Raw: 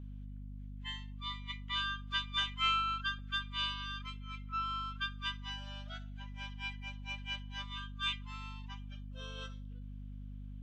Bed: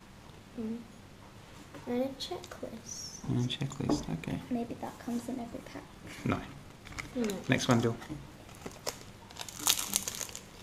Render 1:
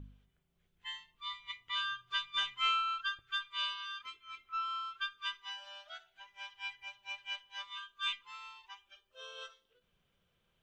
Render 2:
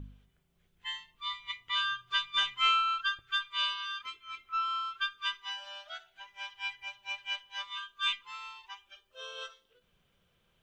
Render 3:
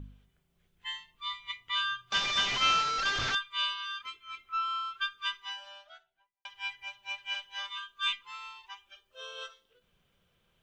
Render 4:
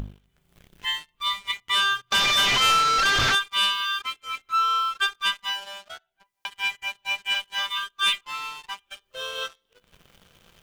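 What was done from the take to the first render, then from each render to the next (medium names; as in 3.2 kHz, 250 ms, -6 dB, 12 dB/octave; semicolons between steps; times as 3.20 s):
de-hum 50 Hz, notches 5
trim +5 dB
2.12–3.35 s: one-bit delta coder 32 kbps, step -25 dBFS; 5.42–6.45 s: studio fade out; 7.30–7.72 s: doubling 44 ms -3 dB
upward compressor, threshold -43 dBFS; waveshaping leveller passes 3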